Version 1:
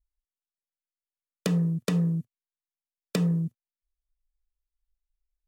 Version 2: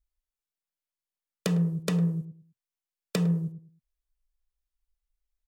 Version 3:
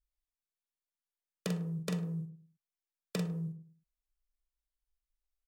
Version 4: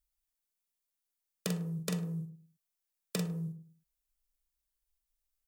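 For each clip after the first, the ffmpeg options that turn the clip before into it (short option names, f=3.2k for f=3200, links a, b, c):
-filter_complex "[0:a]equalizer=f=260:w=3.2:g=-7,asplit=2[a][b];[b]adelay=105,lowpass=f=920:p=1,volume=-11dB,asplit=2[c][d];[d]adelay=105,lowpass=f=920:p=1,volume=0.27,asplit=2[e][f];[f]adelay=105,lowpass=f=920:p=1,volume=0.27[g];[c][e][g]amix=inputs=3:normalize=0[h];[a][h]amix=inputs=2:normalize=0"
-filter_complex "[0:a]asplit=2[a][b];[b]adelay=44,volume=-5.5dB[c];[a][c]amix=inputs=2:normalize=0,volume=-8dB"
-af "highshelf=f=6k:g=10"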